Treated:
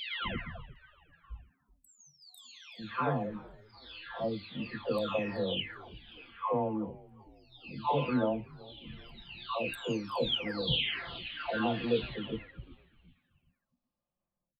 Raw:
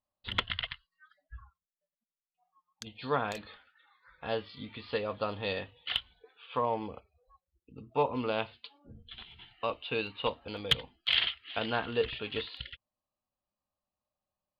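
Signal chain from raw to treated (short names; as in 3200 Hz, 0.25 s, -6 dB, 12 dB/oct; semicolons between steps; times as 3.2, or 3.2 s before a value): spectral delay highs early, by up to 0.977 s; low shelf 490 Hz +9.5 dB; frequency-shifting echo 0.378 s, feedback 48%, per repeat -100 Hz, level -22 dB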